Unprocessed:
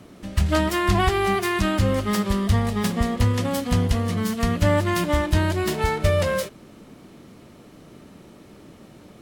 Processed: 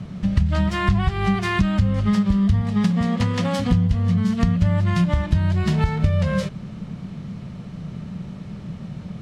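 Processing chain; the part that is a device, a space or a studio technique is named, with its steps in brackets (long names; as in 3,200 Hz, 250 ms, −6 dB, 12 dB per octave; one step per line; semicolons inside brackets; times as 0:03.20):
0:02.61–0:03.58: high-pass filter 120 Hz → 320 Hz 12 dB per octave
jukebox (low-pass filter 5,600 Hz 12 dB per octave; low shelf with overshoot 230 Hz +9 dB, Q 3; downward compressor 5 to 1, threshold −21 dBFS, peak gain reduction 15.5 dB)
level +4.5 dB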